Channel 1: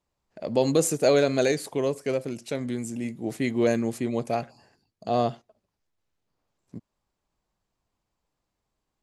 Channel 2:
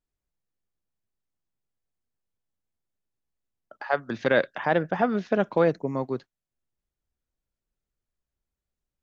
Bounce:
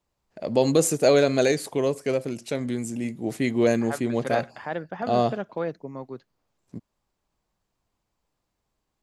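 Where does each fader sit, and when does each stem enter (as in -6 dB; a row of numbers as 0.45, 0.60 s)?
+2.0, -8.0 dB; 0.00, 0.00 s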